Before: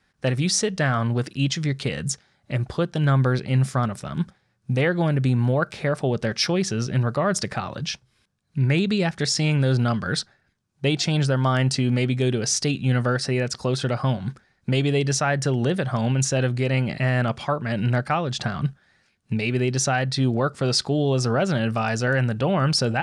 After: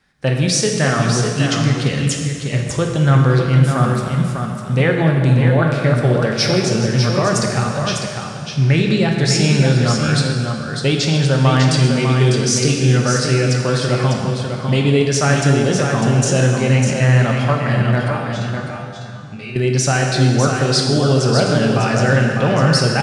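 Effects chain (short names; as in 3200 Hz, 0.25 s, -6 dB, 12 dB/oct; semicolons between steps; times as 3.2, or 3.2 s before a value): 18.1–19.56 resonator 100 Hz, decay 0.37 s, harmonics all, mix 90%; echo 0.6 s -6 dB; plate-style reverb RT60 2.2 s, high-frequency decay 0.85×, DRR 1 dB; gain +3.5 dB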